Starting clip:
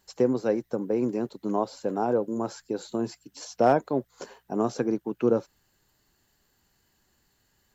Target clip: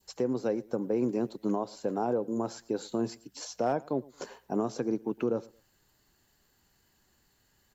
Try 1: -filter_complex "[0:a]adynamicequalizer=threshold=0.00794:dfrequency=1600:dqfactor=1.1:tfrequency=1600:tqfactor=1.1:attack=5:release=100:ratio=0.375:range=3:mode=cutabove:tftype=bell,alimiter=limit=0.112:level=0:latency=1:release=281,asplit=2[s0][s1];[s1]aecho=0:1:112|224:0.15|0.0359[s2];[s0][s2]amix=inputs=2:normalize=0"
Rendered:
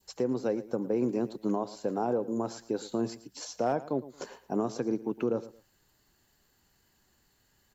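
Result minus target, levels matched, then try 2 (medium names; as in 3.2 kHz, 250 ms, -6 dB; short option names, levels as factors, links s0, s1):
echo-to-direct +6.5 dB
-filter_complex "[0:a]adynamicequalizer=threshold=0.00794:dfrequency=1600:dqfactor=1.1:tfrequency=1600:tqfactor=1.1:attack=5:release=100:ratio=0.375:range=3:mode=cutabove:tftype=bell,alimiter=limit=0.112:level=0:latency=1:release=281,asplit=2[s0][s1];[s1]aecho=0:1:112|224:0.0708|0.017[s2];[s0][s2]amix=inputs=2:normalize=0"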